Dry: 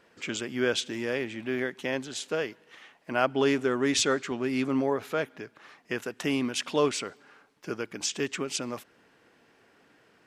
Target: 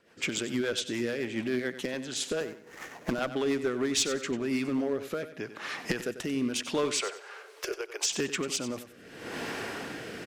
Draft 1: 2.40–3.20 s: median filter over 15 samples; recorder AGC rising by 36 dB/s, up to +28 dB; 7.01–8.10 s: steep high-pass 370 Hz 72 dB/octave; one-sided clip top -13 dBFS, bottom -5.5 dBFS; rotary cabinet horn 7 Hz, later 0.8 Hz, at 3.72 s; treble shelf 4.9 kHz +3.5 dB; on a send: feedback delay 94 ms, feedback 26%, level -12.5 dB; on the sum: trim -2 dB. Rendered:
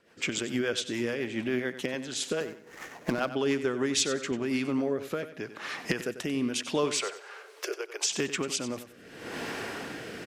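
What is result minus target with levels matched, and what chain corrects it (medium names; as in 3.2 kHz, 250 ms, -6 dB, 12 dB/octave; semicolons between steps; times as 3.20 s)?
one-sided clip: distortion -9 dB
2.40–3.20 s: median filter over 15 samples; recorder AGC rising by 36 dB/s, up to +28 dB; 7.01–8.10 s: steep high-pass 370 Hz 72 dB/octave; one-sided clip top -20.5 dBFS, bottom -5.5 dBFS; rotary cabinet horn 7 Hz, later 0.8 Hz, at 3.72 s; treble shelf 4.9 kHz +3.5 dB; on a send: feedback delay 94 ms, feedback 26%, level -12.5 dB; on the sum: trim -2 dB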